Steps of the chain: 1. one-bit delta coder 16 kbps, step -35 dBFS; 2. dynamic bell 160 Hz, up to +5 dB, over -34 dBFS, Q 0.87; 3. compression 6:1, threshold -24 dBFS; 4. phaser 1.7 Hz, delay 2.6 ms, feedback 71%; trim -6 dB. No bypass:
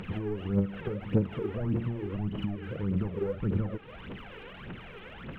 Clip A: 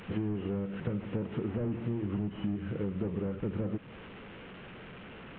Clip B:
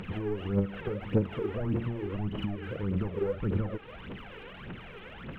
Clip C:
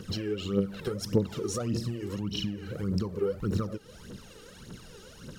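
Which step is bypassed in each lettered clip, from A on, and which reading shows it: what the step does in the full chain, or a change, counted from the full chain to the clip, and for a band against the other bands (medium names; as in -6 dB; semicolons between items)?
4, crest factor change -4.5 dB; 2, 250 Hz band -2.5 dB; 1, 500 Hz band +3.5 dB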